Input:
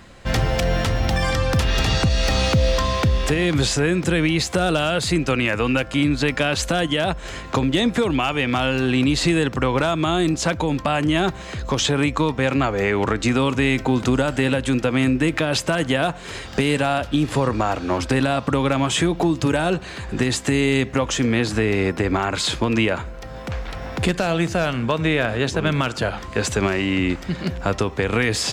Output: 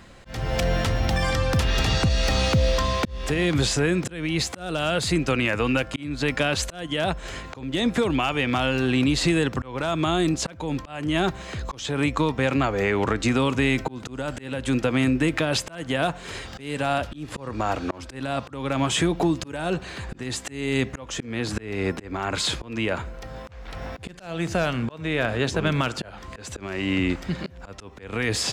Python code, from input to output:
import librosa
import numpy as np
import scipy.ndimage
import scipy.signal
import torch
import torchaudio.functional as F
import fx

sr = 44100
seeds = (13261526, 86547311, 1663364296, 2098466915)

y = fx.auto_swell(x, sr, attack_ms=342.0)
y = y * 10.0 ** (-2.5 / 20.0)